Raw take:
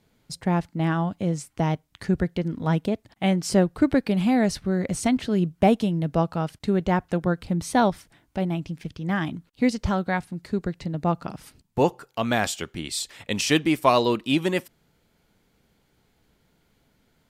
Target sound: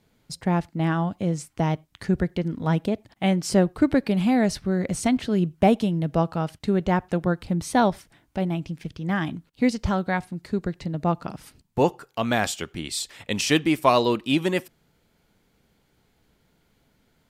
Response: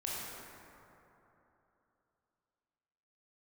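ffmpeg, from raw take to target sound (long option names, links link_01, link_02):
-filter_complex "[0:a]asplit=2[link_01][link_02];[1:a]atrim=start_sample=2205,afade=type=out:start_time=0.15:duration=0.01,atrim=end_sample=7056,lowpass=4800[link_03];[link_02][link_03]afir=irnorm=-1:irlink=0,volume=-26dB[link_04];[link_01][link_04]amix=inputs=2:normalize=0"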